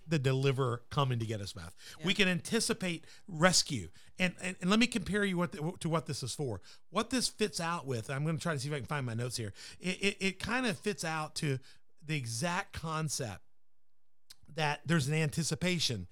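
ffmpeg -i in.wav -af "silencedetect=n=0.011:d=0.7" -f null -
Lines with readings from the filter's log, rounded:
silence_start: 13.35
silence_end: 14.31 | silence_duration: 0.96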